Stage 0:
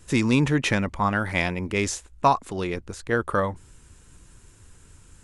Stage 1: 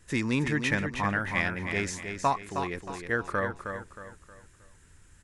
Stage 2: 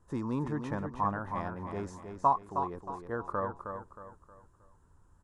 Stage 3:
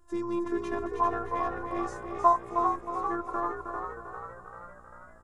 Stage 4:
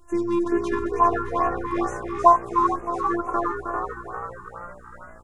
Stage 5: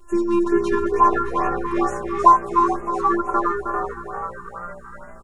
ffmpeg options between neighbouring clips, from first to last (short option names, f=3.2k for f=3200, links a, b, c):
-filter_complex "[0:a]equalizer=f=1.8k:w=2.9:g=8.5,asplit=2[a][b];[b]aecho=0:1:314|628|942|1256:0.447|0.165|0.0612|0.0226[c];[a][c]amix=inputs=2:normalize=0,volume=-7.5dB"
-af "highshelf=f=1.5k:t=q:w=3:g=-12.5,volume=-5.5dB"
-filter_complex "[0:a]afftfilt=real='hypot(re,im)*cos(PI*b)':imag='0':win_size=512:overlap=0.75,asplit=8[a][b][c][d][e][f][g][h];[b]adelay=395,afreqshift=60,volume=-7dB[i];[c]adelay=790,afreqshift=120,volume=-11.9dB[j];[d]adelay=1185,afreqshift=180,volume=-16.8dB[k];[e]adelay=1580,afreqshift=240,volume=-21.6dB[l];[f]adelay=1975,afreqshift=300,volume=-26.5dB[m];[g]adelay=2370,afreqshift=360,volume=-31.4dB[n];[h]adelay=2765,afreqshift=420,volume=-36.3dB[o];[a][i][j][k][l][m][n][o]amix=inputs=8:normalize=0,volume=6.5dB"
-af "afftfilt=real='re*(1-between(b*sr/1024,560*pow(4300/560,0.5+0.5*sin(2*PI*2.2*pts/sr))/1.41,560*pow(4300/560,0.5+0.5*sin(2*PI*2.2*pts/sr))*1.41))':imag='im*(1-between(b*sr/1024,560*pow(4300/560,0.5+0.5*sin(2*PI*2.2*pts/sr))/1.41,560*pow(4300/560,0.5+0.5*sin(2*PI*2.2*pts/sr))*1.41))':win_size=1024:overlap=0.75,volume=8dB"
-af "aecho=1:1:5.1:0.83,volume=1.5dB"